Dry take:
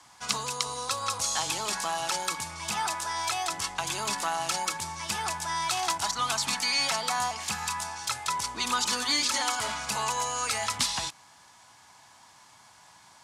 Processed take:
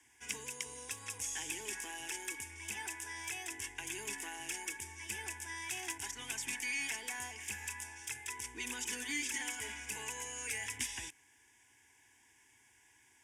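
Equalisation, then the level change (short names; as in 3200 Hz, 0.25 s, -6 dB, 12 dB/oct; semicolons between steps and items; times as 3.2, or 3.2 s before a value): band shelf 860 Hz -13.5 dB 1.3 oct; fixed phaser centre 860 Hz, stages 8; -5.0 dB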